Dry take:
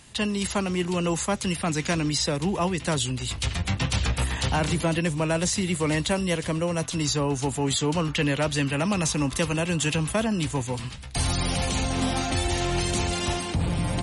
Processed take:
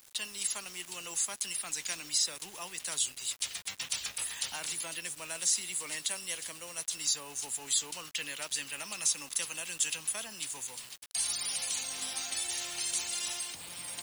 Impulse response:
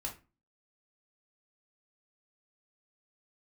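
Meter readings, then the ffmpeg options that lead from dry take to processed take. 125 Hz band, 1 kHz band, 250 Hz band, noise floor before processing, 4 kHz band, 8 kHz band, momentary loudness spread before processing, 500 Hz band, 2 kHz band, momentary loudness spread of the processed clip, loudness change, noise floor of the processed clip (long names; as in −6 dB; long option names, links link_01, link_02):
−34.0 dB, −17.0 dB, −29.0 dB, −36 dBFS, −5.0 dB, +0.5 dB, 3 LU, −22.5 dB, −10.0 dB, 8 LU, −7.5 dB, −52 dBFS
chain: -af "aderivative,acrusher=bits=7:mix=0:aa=0.000001"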